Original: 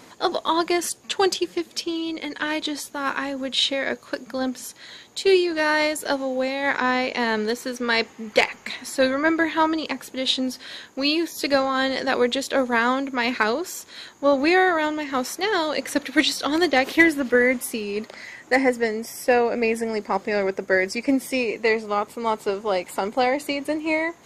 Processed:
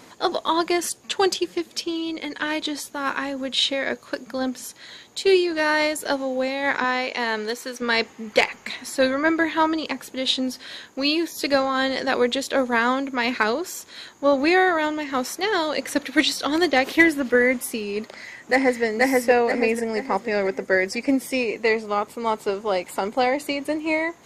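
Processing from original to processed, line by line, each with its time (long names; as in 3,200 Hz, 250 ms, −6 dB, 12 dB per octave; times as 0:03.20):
0:06.84–0:07.82: low-shelf EQ 290 Hz −10.5 dB
0:18.01–0:18.83: delay throw 480 ms, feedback 45%, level −0.5 dB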